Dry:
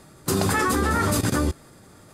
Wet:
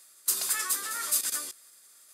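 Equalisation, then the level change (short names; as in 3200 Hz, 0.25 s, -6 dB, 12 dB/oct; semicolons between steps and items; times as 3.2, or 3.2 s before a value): HPF 440 Hz 6 dB/oct; differentiator; bell 840 Hz -7.5 dB 0.23 oct; +2.0 dB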